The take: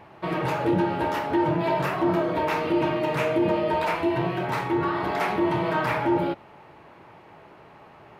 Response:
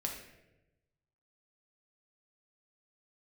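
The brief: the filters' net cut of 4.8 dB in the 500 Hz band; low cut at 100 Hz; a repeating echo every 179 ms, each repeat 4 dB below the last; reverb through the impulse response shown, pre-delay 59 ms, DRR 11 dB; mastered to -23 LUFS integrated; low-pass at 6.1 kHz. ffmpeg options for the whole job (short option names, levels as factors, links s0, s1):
-filter_complex "[0:a]highpass=100,lowpass=6100,equalizer=f=500:t=o:g=-7.5,aecho=1:1:179|358|537|716|895|1074|1253|1432|1611:0.631|0.398|0.25|0.158|0.0994|0.0626|0.0394|0.0249|0.0157,asplit=2[s0][s1];[1:a]atrim=start_sample=2205,adelay=59[s2];[s1][s2]afir=irnorm=-1:irlink=0,volume=0.251[s3];[s0][s3]amix=inputs=2:normalize=0,volume=1.19"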